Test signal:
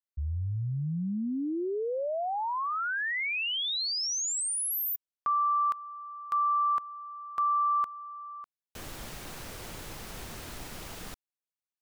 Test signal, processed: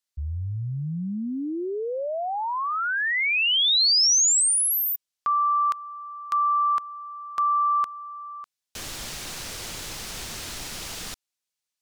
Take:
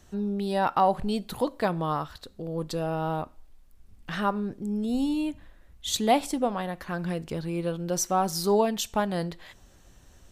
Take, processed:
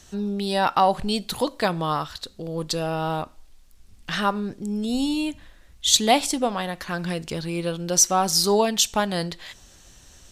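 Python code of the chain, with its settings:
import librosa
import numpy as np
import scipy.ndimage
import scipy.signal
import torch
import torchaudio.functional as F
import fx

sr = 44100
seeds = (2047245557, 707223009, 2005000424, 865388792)

y = fx.peak_eq(x, sr, hz=5500.0, db=10.5, octaves=2.7)
y = F.gain(torch.from_numpy(y), 2.0).numpy()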